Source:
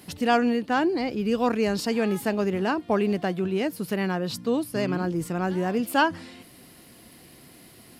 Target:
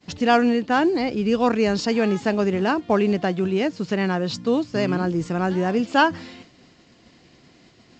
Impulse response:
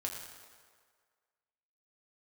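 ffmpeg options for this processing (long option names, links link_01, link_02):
-af "agate=range=-33dB:threshold=-44dB:ratio=3:detection=peak,volume=4dB" -ar 16000 -c:a pcm_mulaw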